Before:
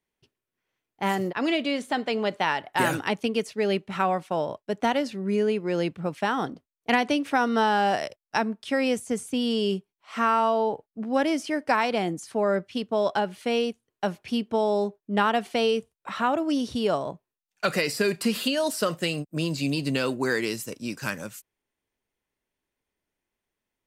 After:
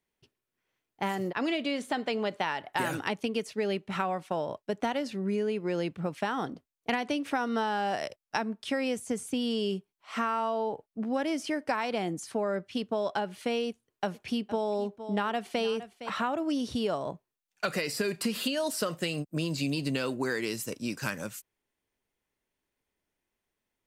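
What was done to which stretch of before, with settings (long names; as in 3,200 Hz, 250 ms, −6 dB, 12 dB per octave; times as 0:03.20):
0:13.68–0:16.10: single-tap delay 462 ms −17 dB
whole clip: downward compressor 3 to 1, threshold −28 dBFS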